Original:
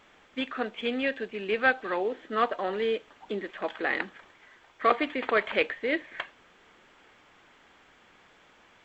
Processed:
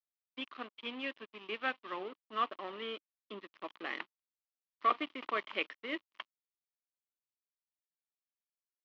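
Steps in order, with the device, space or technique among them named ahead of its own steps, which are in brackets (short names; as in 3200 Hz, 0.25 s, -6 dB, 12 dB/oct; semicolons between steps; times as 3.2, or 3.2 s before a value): blown loudspeaker (crossover distortion -37.5 dBFS; speaker cabinet 230–4100 Hz, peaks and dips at 310 Hz +3 dB, 480 Hz -7 dB, 730 Hz -5 dB, 1100 Hz +7 dB, 1600 Hz -6 dB, 3000 Hz +6 dB); gain -8 dB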